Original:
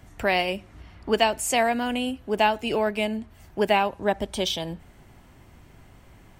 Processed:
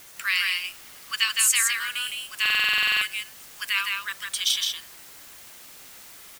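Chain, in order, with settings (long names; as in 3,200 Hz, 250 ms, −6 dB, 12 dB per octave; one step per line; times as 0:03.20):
Butterworth high-pass 1,100 Hz 96 dB per octave
high-shelf EQ 4,100 Hz +10.5 dB
bit-depth reduction 8 bits, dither triangular
on a send: single-tap delay 162 ms −3.5 dB
on the sum: buffer that repeats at 0:02.41, samples 2,048, times 12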